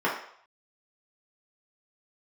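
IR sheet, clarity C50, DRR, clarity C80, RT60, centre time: 5.5 dB, -6.0 dB, 9.0 dB, 0.65 s, 34 ms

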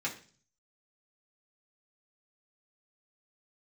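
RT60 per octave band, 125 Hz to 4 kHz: 0.80, 0.55, 0.45, 0.40, 0.40, 0.50 s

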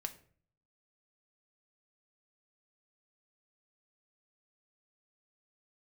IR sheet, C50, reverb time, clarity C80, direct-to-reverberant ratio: 15.0 dB, 0.50 s, 19.0 dB, 6.5 dB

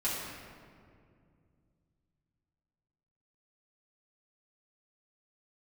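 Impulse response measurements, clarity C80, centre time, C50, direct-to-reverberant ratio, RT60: 1.5 dB, 0.107 s, -0.5 dB, -10.0 dB, 2.3 s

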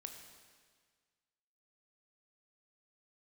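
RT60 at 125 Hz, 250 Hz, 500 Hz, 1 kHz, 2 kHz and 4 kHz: 1.8, 1.7, 1.7, 1.7, 1.7, 1.6 s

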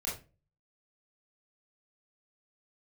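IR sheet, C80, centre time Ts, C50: 13.0 dB, 35 ms, 6.0 dB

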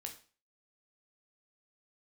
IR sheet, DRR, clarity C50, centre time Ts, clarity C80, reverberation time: 3.0 dB, 11.0 dB, 13 ms, 15.5 dB, 0.40 s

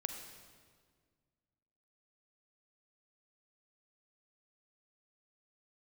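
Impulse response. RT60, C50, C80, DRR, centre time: 1.8 s, 5.5 dB, 7.0 dB, 5.0 dB, 37 ms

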